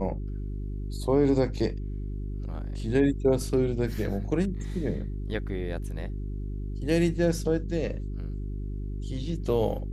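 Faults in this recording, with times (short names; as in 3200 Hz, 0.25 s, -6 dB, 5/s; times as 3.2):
hum 50 Hz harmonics 8 -33 dBFS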